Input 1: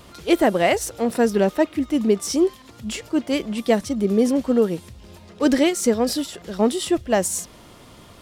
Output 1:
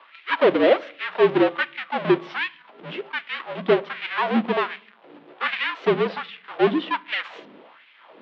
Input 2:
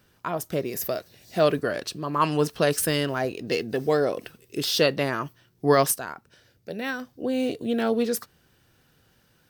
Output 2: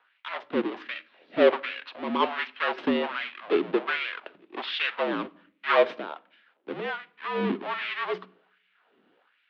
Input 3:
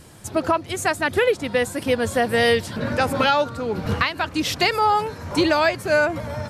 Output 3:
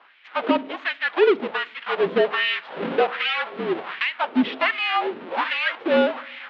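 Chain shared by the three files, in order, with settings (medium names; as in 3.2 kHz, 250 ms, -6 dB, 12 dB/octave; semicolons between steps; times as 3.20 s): square wave that keeps the level; hum notches 60/120/180/240 Hz; LFO high-pass sine 1.3 Hz 300–2400 Hz; simulated room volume 870 m³, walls furnished, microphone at 0.31 m; mistuned SSB -53 Hz 230–3500 Hz; trim -6.5 dB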